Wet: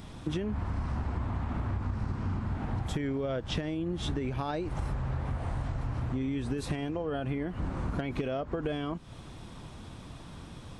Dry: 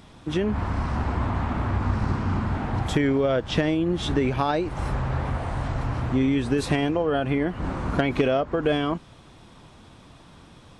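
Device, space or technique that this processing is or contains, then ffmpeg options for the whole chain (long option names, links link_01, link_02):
ASMR close-microphone chain: -af "lowshelf=frequency=220:gain=6.5,acompressor=threshold=-30dB:ratio=6,highshelf=frequency=8700:gain=5.5"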